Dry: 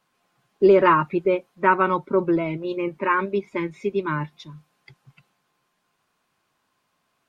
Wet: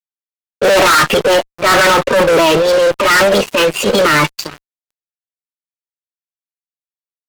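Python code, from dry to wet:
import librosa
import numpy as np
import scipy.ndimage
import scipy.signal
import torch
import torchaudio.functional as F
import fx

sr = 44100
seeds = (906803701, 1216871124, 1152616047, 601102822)

y = scipy.signal.sosfilt(scipy.signal.butter(2, 360.0, 'highpass', fs=sr, output='sos'), x)
y = fx.formant_shift(y, sr, semitones=4)
y = fx.transient(y, sr, attack_db=-10, sustain_db=9)
y = fx.fuzz(y, sr, gain_db=34.0, gate_db=-43.0)
y = y * librosa.db_to_amplitude(5.0)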